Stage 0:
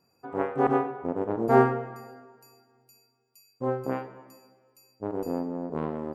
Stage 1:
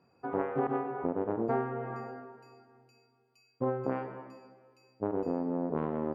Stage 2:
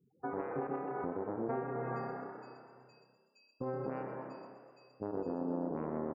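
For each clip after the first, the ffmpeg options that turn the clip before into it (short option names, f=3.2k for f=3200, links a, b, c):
-af "highpass=62,acompressor=threshold=-30dB:ratio=20,lowpass=2.7k,volume=3.5dB"
-filter_complex "[0:a]afftfilt=real='re*gte(hypot(re,im),0.00178)':imag='im*gte(hypot(re,im),0.00178)':win_size=1024:overlap=0.75,alimiter=level_in=3.5dB:limit=-24dB:level=0:latency=1:release=292,volume=-3.5dB,asplit=9[a][b][c][d][e][f][g][h][i];[b]adelay=124,afreqshift=32,volume=-9dB[j];[c]adelay=248,afreqshift=64,volume=-13dB[k];[d]adelay=372,afreqshift=96,volume=-17dB[l];[e]adelay=496,afreqshift=128,volume=-21dB[m];[f]adelay=620,afreqshift=160,volume=-25.1dB[n];[g]adelay=744,afreqshift=192,volume=-29.1dB[o];[h]adelay=868,afreqshift=224,volume=-33.1dB[p];[i]adelay=992,afreqshift=256,volume=-37.1dB[q];[a][j][k][l][m][n][o][p][q]amix=inputs=9:normalize=0"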